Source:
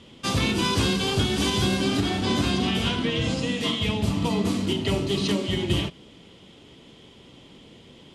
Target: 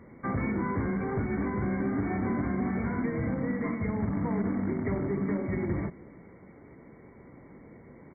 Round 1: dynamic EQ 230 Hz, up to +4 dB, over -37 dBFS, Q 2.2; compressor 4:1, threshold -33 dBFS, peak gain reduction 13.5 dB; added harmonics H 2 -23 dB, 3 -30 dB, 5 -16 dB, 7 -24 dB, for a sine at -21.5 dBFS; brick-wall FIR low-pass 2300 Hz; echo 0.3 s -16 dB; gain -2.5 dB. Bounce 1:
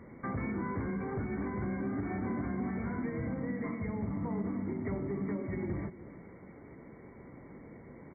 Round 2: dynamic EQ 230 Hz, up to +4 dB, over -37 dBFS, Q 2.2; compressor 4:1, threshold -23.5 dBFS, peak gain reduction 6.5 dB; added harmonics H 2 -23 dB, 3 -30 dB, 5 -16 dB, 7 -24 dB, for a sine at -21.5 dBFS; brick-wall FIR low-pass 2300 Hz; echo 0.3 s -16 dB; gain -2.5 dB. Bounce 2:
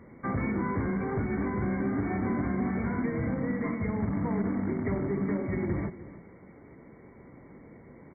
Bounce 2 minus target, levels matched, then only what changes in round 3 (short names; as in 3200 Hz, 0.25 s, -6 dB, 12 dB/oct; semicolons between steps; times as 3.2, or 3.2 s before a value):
echo-to-direct +8.5 dB
change: echo 0.3 s -24.5 dB